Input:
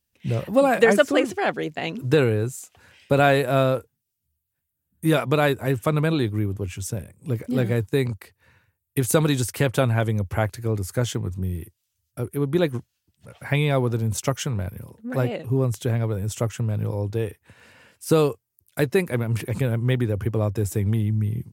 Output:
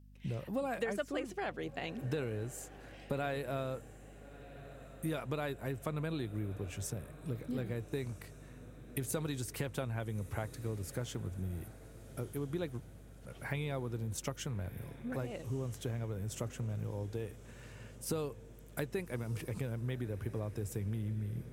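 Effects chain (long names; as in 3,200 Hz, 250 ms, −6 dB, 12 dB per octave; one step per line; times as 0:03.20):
downward compressor 3 to 1, threshold −31 dBFS, peak gain reduction 15 dB
mains hum 50 Hz, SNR 18 dB
feedback delay with all-pass diffusion 1,316 ms, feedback 56%, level −16 dB
level −6.5 dB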